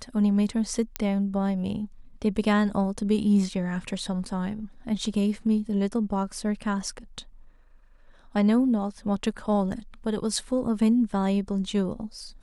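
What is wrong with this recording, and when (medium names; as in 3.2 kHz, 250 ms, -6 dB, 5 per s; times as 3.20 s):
0.96 s: pop -10 dBFS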